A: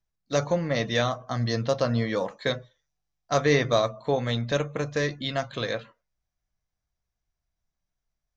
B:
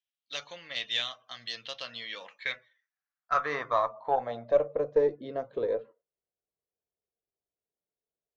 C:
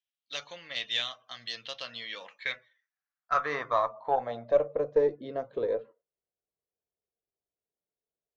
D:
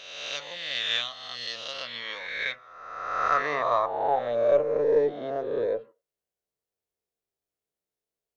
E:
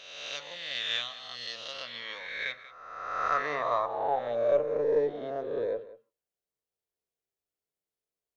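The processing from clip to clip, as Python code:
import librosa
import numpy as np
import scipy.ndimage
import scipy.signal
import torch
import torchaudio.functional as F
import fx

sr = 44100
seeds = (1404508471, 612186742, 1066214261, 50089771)

y1 = fx.filter_sweep_bandpass(x, sr, from_hz=3100.0, to_hz=440.0, start_s=2.03, end_s=5.06, q=4.4)
y1 = fx.cheby_harmonics(y1, sr, harmonics=(6, 8), levels_db=(-30, -43), full_scale_db=-16.5)
y1 = F.gain(torch.from_numpy(y1), 6.5).numpy()
y2 = y1
y3 = fx.spec_swells(y2, sr, rise_s=1.37)
y4 = y3 + 10.0 ** (-17.0 / 20.0) * np.pad(y3, (int(185 * sr / 1000.0), 0))[:len(y3)]
y4 = F.gain(torch.from_numpy(y4), -4.0).numpy()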